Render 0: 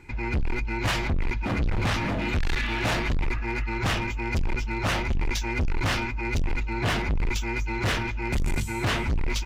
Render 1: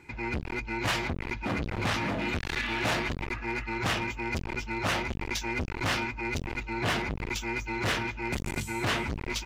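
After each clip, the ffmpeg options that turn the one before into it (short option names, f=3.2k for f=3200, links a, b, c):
-af "highpass=f=150:p=1,volume=-1.5dB"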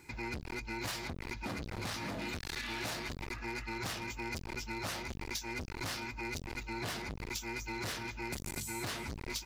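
-af "aexciter=amount=1.5:drive=9.5:freq=4k,acompressor=threshold=-32dB:ratio=6,volume=-4dB"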